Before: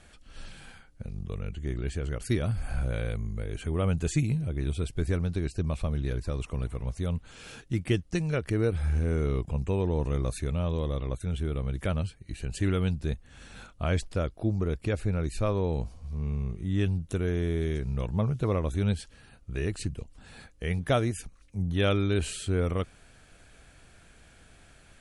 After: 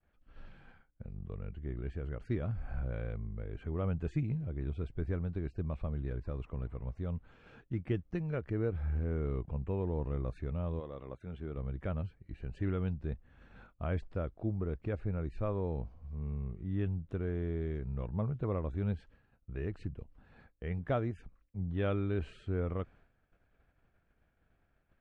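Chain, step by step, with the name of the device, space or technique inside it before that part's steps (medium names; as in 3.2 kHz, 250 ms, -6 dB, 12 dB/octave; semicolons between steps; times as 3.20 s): hearing-loss simulation (low-pass 1.7 kHz 12 dB/octave; expander -47 dBFS); 10.79–11.56 s: high-pass 490 Hz -> 120 Hz 6 dB/octave; trim -7 dB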